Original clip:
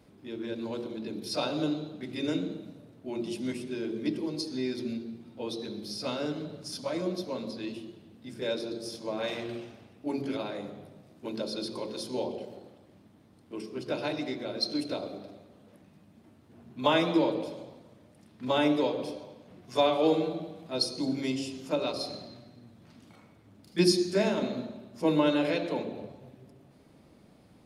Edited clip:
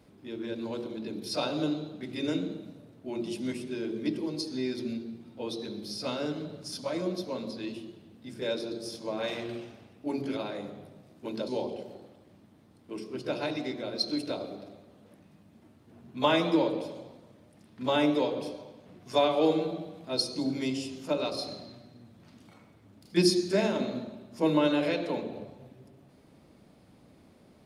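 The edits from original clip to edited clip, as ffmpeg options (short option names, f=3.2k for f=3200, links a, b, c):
-filter_complex "[0:a]asplit=2[a][b];[a]atrim=end=11.482[c];[b]atrim=start=12.098[d];[c][d]acrossfade=d=0.004:c1=hsin:c2=hsin"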